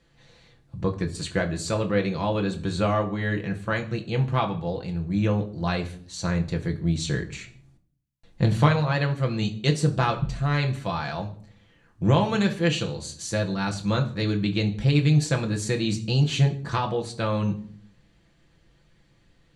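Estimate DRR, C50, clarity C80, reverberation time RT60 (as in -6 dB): 2.0 dB, 14.0 dB, 18.0 dB, 0.55 s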